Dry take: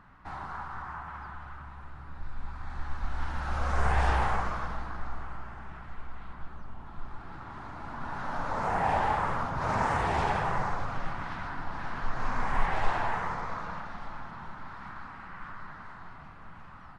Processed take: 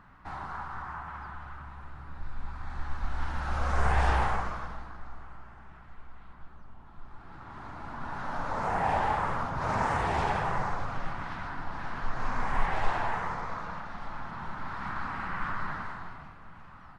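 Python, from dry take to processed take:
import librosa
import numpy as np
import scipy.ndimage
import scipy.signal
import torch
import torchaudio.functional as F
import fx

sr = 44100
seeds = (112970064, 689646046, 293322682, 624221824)

y = fx.gain(x, sr, db=fx.line((4.2, 0.5), (4.99, -7.0), (7.03, -7.0), (7.67, -0.5), (13.83, -0.5), (15.19, 9.5), (15.74, 9.5), (16.41, -1.5)))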